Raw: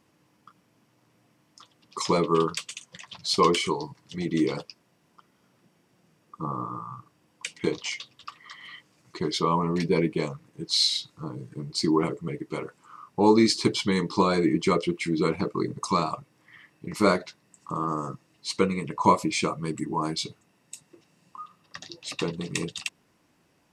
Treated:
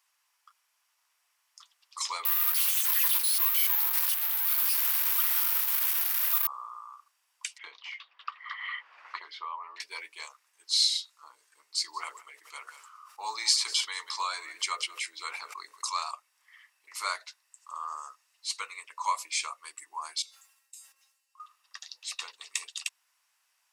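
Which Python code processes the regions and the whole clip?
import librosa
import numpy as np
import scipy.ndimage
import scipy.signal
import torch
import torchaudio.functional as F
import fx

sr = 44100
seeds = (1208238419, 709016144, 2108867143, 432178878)

y = fx.chain(x, sr, fx.clip_1bit(),
    fx.bandpass_edges(low_hz=520.0, high_hz=4800.0),
    fx.resample_bad(factor=3, down='none', up='zero_stuff'), at=(2.25, 6.47))
y = fx.chain(y, sr, fx.air_absorb(metres=340.0),
    fx.band_squash(depth_pct=100), at=(7.58, 9.8))
y = fx.chain(y, sr, fx.echo_single(ms=184, db=-21.0),
    fx.sustainer(db_per_s=56.0), at=(11.73, 16.11))
y = fx.chain(y, sr, fx.high_shelf(hz=8900.0, db=7.0),
    fx.comb_fb(f0_hz=270.0, decay_s=0.19, harmonics='all', damping=0.0, mix_pct=90),
    fx.sustainer(db_per_s=53.0), at=(20.22, 21.4))
y = scipy.signal.sosfilt(scipy.signal.butter(4, 960.0, 'highpass', fs=sr, output='sos'), y)
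y = fx.high_shelf(y, sr, hz=4900.0, db=10.0)
y = y * librosa.db_to_amplitude(-6.0)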